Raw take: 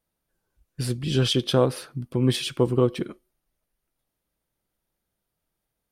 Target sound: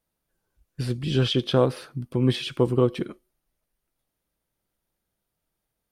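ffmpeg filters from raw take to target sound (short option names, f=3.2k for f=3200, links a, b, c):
-filter_complex "[0:a]acrossover=split=4400[a][b];[b]acompressor=threshold=-46dB:ratio=4:attack=1:release=60[c];[a][c]amix=inputs=2:normalize=0"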